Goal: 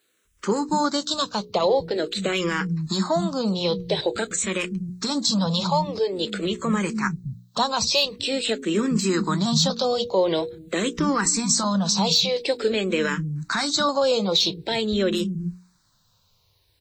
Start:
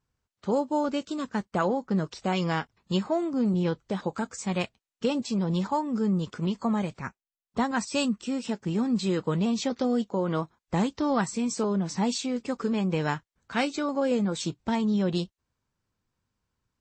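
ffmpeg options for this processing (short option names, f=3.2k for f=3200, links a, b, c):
-filter_complex "[0:a]highshelf=f=5.2k:g=8,bandreject=f=60:t=h:w=6,bandreject=f=120:t=h:w=6,bandreject=f=180:t=h:w=6,bandreject=f=240:t=h:w=6,bandreject=f=300:t=h:w=6,bandreject=f=360:t=h:w=6,bandreject=f=420:t=h:w=6,bandreject=f=480:t=h:w=6,asplit=2[a][b];[b]acompressor=threshold=-41dB:ratio=6,volume=1.5dB[c];[a][c]amix=inputs=2:normalize=0,equalizer=f=250:t=o:w=0.33:g=-8,equalizer=f=800:t=o:w=0.33:g=-4,equalizer=f=4k:t=o:w=0.33:g=11,acrossover=split=180[d][e];[d]adelay=250[f];[f][e]amix=inputs=2:normalize=0,asoftclip=type=tanh:threshold=-12dB,alimiter=level_in=19dB:limit=-1dB:release=50:level=0:latency=1,asplit=2[g][h];[h]afreqshift=-0.47[i];[g][i]amix=inputs=2:normalize=1,volume=-8.5dB"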